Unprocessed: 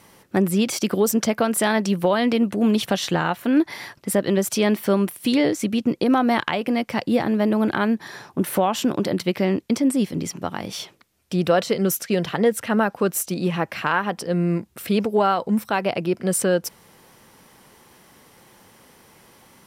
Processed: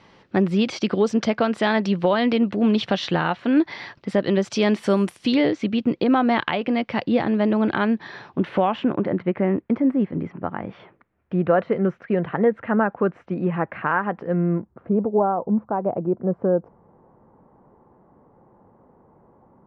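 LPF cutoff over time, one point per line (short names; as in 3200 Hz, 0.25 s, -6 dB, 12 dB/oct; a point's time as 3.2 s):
LPF 24 dB/oct
4.42 s 4500 Hz
5.01 s 10000 Hz
5.39 s 4000 Hz
8.32 s 4000 Hz
9.16 s 1900 Hz
14.35 s 1900 Hz
14.91 s 1000 Hz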